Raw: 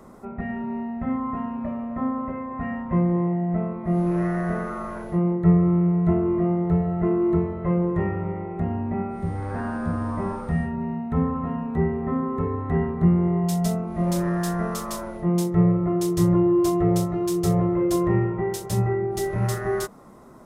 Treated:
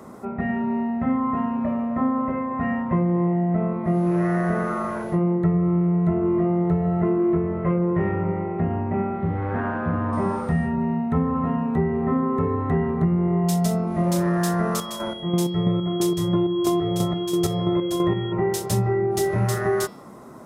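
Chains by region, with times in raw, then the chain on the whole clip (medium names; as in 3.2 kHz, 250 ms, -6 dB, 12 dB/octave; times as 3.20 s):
7.18–10.13 s: self-modulated delay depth 0.094 ms + low-pass 3 kHz 24 dB/octave + de-hum 46.31 Hz, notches 29
14.78–18.31 s: square tremolo 3 Hz, depth 60%, duty 40% + whistle 3.3 kHz -42 dBFS
whole clip: high-pass 88 Hz; de-hum 178.6 Hz, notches 30; compression, threshold -23 dBFS; trim +5.5 dB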